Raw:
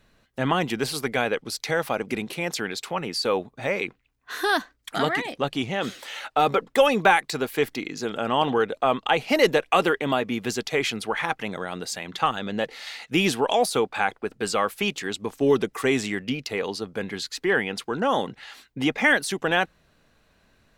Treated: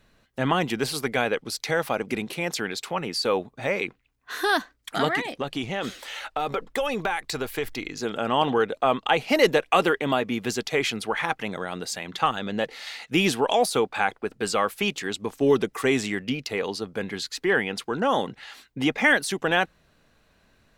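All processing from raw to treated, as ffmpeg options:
-filter_complex "[0:a]asettb=1/sr,asplit=3[a][b][c];[a]atrim=end=5.254[d];[b]atrim=start=5.25:end=8.01,asetpts=PTS-STARTPTS,afade=t=in:d=0.004:c=qsin,afade=t=out:st=2.756:d=0.004:c=qsin,asubboost=boost=11.5:cutoff=65,acompressor=threshold=-23dB:ratio=4:attack=3.2:release=140:knee=1:detection=peak[e];[c]atrim=start=8.006[f];[d][e]acrossfade=d=0.004:c1=hsin:c2=qsin[g];[g][f]acrossfade=d=0.004:c1=qsin:c2=hsin"

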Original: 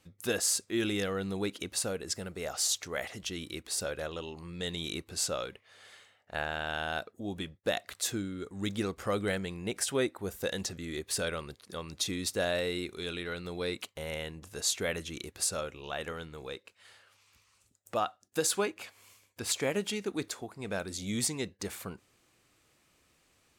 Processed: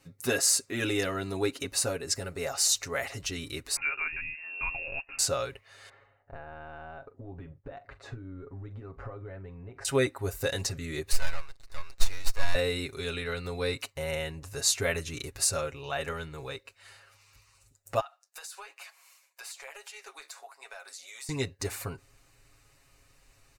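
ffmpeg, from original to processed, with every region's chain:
-filter_complex "[0:a]asettb=1/sr,asplit=3[a][b][c];[a]atrim=end=3.764[d];[b]atrim=start=3.76:end=5.19,asetpts=PTS-STARTPTS,afade=t=in:d=0.004:c=qsin,afade=t=out:st=1.426:d=0.004:c=qsin,highpass=f=160:p=1,lowpass=f=2.5k:t=q:w=0.5098,lowpass=f=2.5k:t=q:w=0.6013,lowpass=f=2.5k:t=q:w=0.9,lowpass=f=2.5k:t=q:w=2.563,afreqshift=-2900,acompressor=mode=upward:threshold=-45dB:ratio=2.5:attack=3.2:release=140:knee=2.83:detection=peak[e];[c]atrim=start=5.186[f];[d][e]acrossfade=d=0.004:c1=hsin:c2=qsin[g];[g][f]acrossfade=d=0.004:c1=qsin:c2=hsin,asettb=1/sr,asplit=3[h][i][j];[h]atrim=end=5.894[k];[i]atrim=start=5.89:end=9.85,asetpts=PTS-STARTPTS,afade=t=in:d=0.004:c=qsin,afade=t=out:st=3.956:d=0.004:c=qsin,lowpass=1.2k,acompressor=threshold=-43dB:ratio=10:attack=3.2:release=140:knee=1:detection=peak,asplit=2[l][m];[m]adelay=42,volume=-14dB[n];[l][n]amix=inputs=2:normalize=0,atrim=end_sample=174636[o];[j]atrim=start=9.846[p];[k][o]acrossfade=d=0.004:c1=hsin:c2=qsin[q];[q][p]acrossfade=d=0.004:c1=qsin:c2=hsin,asettb=1/sr,asplit=3[r][s][t];[r]atrim=end=11.124[u];[s]atrim=start=11.12:end=12.55,asetpts=PTS-STARTPTS,afade=t=in:d=0.004:c=qsin,afade=t=out:st=1.426:d=0.004:c=qsin,highpass=880,adynamicsmooth=sensitivity=7.5:basefreq=5.9k,aeval=exprs='max(val(0),0)':c=same[v];[t]atrim=start=12.546[w];[u][v]acrossfade=d=0.004:c1=hsin:c2=qsin[x];[x][w]acrossfade=d=0.004:c1=qsin:c2=hsin,asettb=1/sr,asplit=3[y][z][aa];[y]atrim=end=18.004[ab];[z]atrim=start=18:end=21.29,asetpts=PTS-STARTPTS,afade=t=in:d=0.004:c=qsin,afade=t=out:st=3.286:d=0.004:c=qsin,highpass=f=660:w=0.5412,highpass=f=660:w=1.3066,flanger=delay=4.6:depth=9.9:regen=-54:speed=1.1:shape=sinusoidal,acompressor=threshold=-44dB:ratio=8:attack=3.2:release=140:knee=1:detection=peak[ac];[aa]atrim=start=21.286[ad];[ab][ac]acrossfade=d=0.004:c1=hsin:c2=qsin[ae];[ae][ad]acrossfade=d=0.004:c1=qsin:c2=hsin,bandreject=f=3.3k:w=6.2,aecho=1:1:7.3:0.81,asubboost=boost=10.5:cutoff=60,volume=2.5dB"

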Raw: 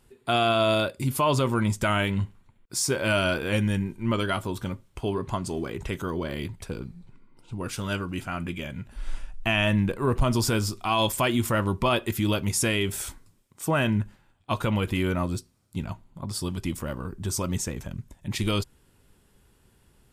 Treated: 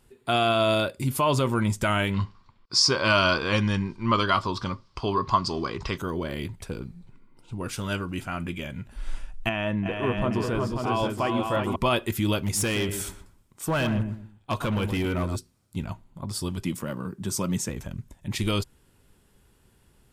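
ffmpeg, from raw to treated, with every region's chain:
-filter_complex "[0:a]asettb=1/sr,asplit=3[a][b][c];[a]atrim=end=2.144[d];[b]atrim=start=2.14:end=5.98,asetpts=PTS-STARTPTS,afade=t=in:d=0.004:c=qsin,afade=t=out:st=3.836:d=0.004:c=qsin,lowpass=f=4.9k:t=q:w=6.1,equalizer=f=1.1k:w=3.3:g=14[e];[c]atrim=start=5.976[f];[d][e]acrossfade=d=0.004:c1=hsin:c2=qsin[g];[g][f]acrossfade=d=0.004:c1=qsin:c2=hsin,asettb=1/sr,asplit=3[h][i][j];[h]atrim=end=9.494[k];[i]atrim=start=9.49:end=11.76,asetpts=PTS-STARTPTS,afade=t=in:d=0.004:c=qsin,afade=t=out:st=2.266:d=0.004:c=qsin,lowpass=f=1.1k:p=1,lowshelf=f=140:g=-11,aecho=1:1:338|364|538|816:0.168|0.562|0.596|0.266,atrim=end_sample=100107[l];[j]atrim=start=11.756[m];[k][l]acrossfade=d=0.004:c1=hsin:c2=qsin[n];[n][m]acrossfade=d=0.004:c1=qsin:c2=hsin,asettb=1/sr,asplit=3[o][p][q];[o]atrim=end=12.414[r];[p]atrim=start=12.41:end=15.36,asetpts=PTS-STARTPTS,afade=t=in:d=0.004:c=qsin,afade=t=out:st=2.946:d=0.004:c=qsin,asplit=2[s][t];[t]adelay=122,lowpass=f=1.4k:p=1,volume=-8dB,asplit=2[u][v];[v]adelay=122,lowpass=f=1.4k:p=1,volume=0.29,asplit=2[w][x];[x]adelay=122,lowpass=f=1.4k:p=1,volume=0.29[y];[s][u][w][y]amix=inputs=4:normalize=0,atrim=end_sample=130095,asoftclip=type=hard:threshold=-20.5dB[z];[q]atrim=start=15.356[aa];[r][z]acrossfade=d=0.004:c1=hsin:c2=qsin[ab];[ab][aa]acrossfade=d=0.004:c1=qsin:c2=hsin,asettb=1/sr,asplit=3[ac][ad][ae];[ac]atrim=end=16.634[af];[ad]atrim=start=16.63:end=17.69,asetpts=PTS-STARTPTS,afade=t=in:d=0.004:c=qsin,afade=t=out:st=1.056:d=0.004:c=qsin,highpass=f=110:w=0.5412,highpass=f=110:w=1.3066,equalizer=f=190:w=4.5:g=5.5,bandreject=f=740:w=13[ag];[ae]atrim=start=17.686[ah];[af][ag]acrossfade=d=0.004:c1=hsin:c2=qsin[ai];[ai][ah]acrossfade=d=0.004:c1=qsin:c2=hsin"

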